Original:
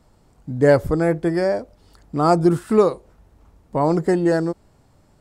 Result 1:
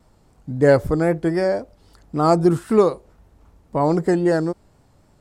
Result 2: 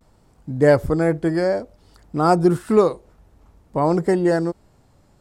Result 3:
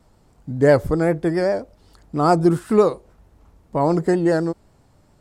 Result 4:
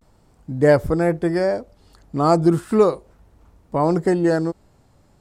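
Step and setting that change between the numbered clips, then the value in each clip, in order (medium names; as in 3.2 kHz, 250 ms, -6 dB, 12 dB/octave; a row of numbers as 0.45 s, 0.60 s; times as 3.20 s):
vibrato, rate: 3.8 Hz, 0.55 Hz, 7.5 Hz, 0.36 Hz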